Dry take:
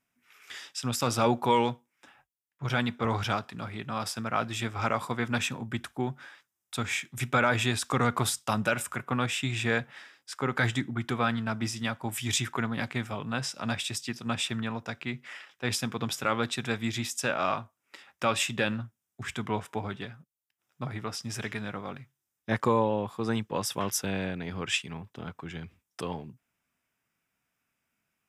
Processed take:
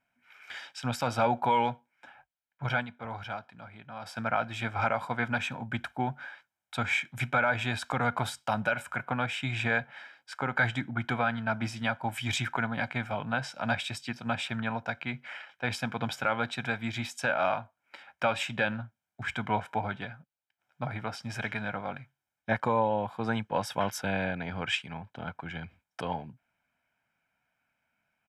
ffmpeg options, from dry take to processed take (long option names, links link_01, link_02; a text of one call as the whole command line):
ffmpeg -i in.wav -filter_complex "[0:a]asplit=3[link_01][link_02][link_03];[link_01]atrim=end=2.87,asetpts=PTS-STARTPTS,afade=type=out:start_time=2.66:duration=0.21:silence=0.266073[link_04];[link_02]atrim=start=2.87:end=4.01,asetpts=PTS-STARTPTS,volume=-11.5dB[link_05];[link_03]atrim=start=4.01,asetpts=PTS-STARTPTS,afade=type=in:duration=0.21:silence=0.266073[link_06];[link_04][link_05][link_06]concat=n=3:v=0:a=1,bass=frequency=250:gain=-7,treble=frequency=4000:gain=-15,aecho=1:1:1.3:0.61,alimiter=limit=-18.5dB:level=0:latency=1:release=409,volume=3dB" out.wav